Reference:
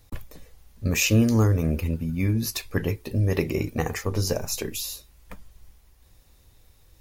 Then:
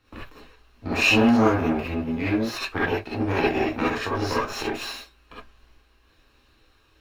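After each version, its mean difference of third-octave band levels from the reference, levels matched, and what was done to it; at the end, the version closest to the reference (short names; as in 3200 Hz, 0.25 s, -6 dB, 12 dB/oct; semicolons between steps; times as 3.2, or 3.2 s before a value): 9.5 dB: minimum comb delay 0.72 ms; three-band isolator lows -14 dB, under 260 Hz, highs -22 dB, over 4200 Hz; non-linear reverb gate 90 ms rising, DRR -7.5 dB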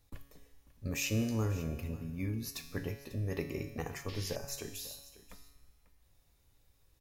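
4.0 dB: resonator 140 Hz, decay 1.2 s, harmonics all, mix 80%; painted sound noise, 4.08–4.36, 1700–5600 Hz -50 dBFS; echo 0.544 s -17.5 dB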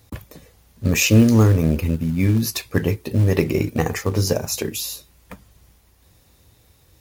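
1.5 dB: HPF 82 Hz 12 dB/oct; low shelf 440 Hz +3 dB; in parallel at -4 dB: short-mantissa float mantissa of 2-bit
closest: third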